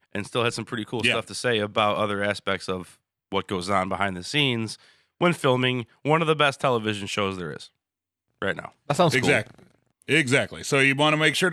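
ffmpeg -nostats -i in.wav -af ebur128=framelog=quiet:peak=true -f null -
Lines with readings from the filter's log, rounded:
Integrated loudness:
  I:         -23.6 LUFS
  Threshold: -34.1 LUFS
Loudness range:
  LRA:         3.5 LU
  Threshold: -44.9 LUFS
  LRA low:   -26.4 LUFS
  LRA high:  -23.0 LUFS
True peak:
  Peak:       -6.5 dBFS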